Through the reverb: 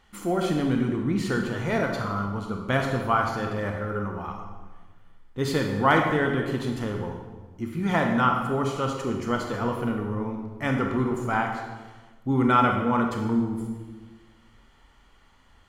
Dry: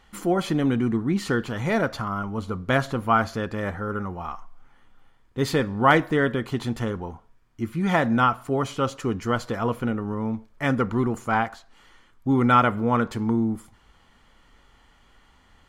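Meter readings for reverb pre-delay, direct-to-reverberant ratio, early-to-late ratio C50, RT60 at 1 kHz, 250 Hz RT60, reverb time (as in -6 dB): 24 ms, 2.0 dB, 4.0 dB, 1.2 s, 1.6 s, 1.3 s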